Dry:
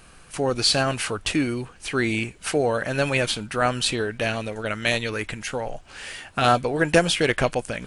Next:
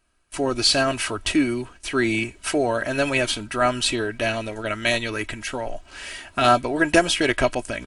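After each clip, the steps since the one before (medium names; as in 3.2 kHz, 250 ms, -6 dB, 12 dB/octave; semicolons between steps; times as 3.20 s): gate with hold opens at -35 dBFS; comb 3.1 ms, depth 59%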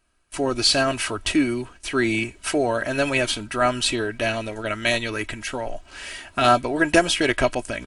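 no audible change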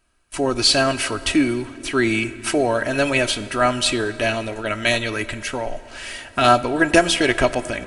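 plate-style reverb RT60 3.2 s, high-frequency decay 0.55×, DRR 14.5 dB; trim +2.5 dB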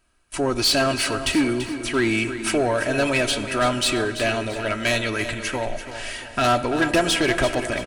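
saturation -13.5 dBFS, distortion -12 dB; feedback delay 337 ms, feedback 40%, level -11 dB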